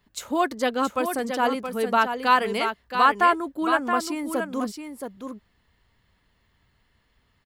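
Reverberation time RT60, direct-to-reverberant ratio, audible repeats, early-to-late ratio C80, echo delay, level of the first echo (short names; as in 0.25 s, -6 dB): none, none, 1, none, 0.673 s, -7.0 dB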